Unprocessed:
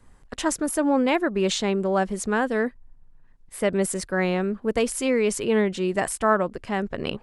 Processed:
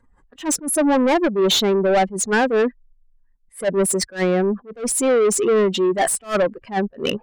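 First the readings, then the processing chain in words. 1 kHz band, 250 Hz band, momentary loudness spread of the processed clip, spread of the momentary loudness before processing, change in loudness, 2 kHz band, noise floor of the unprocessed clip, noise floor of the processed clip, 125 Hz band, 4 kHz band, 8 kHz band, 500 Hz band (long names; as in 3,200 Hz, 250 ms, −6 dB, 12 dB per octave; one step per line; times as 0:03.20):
+4.0 dB, +3.0 dB, 7 LU, 6 LU, +5.0 dB, +2.5 dB, −52 dBFS, −58 dBFS, +2.0 dB, +8.5 dB, +8.5 dB, +5.5 dB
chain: expanding power law on the bin magnitudes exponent 1.9
mid-hump overdrive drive 23 dB, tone 7,400 Hz, clips at −9 dBFS
level that may rise only so fast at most 230 dB per second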